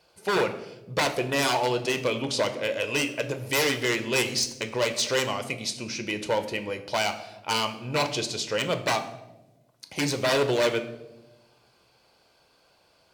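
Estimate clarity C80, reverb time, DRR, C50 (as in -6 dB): 14.5 dB, 1.1 s, 8.0 dB, 12.5 dB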